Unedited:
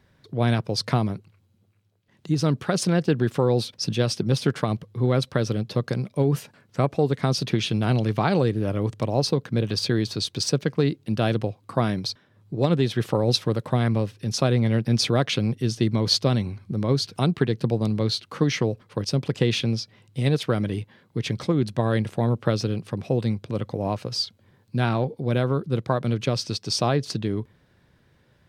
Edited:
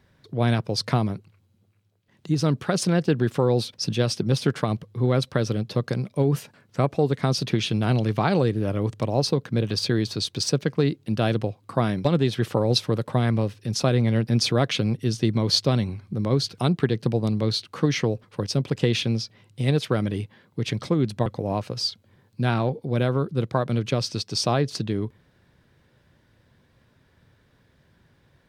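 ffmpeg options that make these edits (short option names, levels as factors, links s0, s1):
-filter_complex "[0:a]asplit=3[s0][s1][s2];[s0]atrim=end=12.052[s3];[s1]atrim=start=12.628:end=21.842[s4];[s2]atrim=start=23.608[s5];[s3][s4]acrossfade=d=0.004:c1=hsin:c2=hsin[s6];[s6][s5]acrossfade=d=0.004:c1=hsin:c2=hsin"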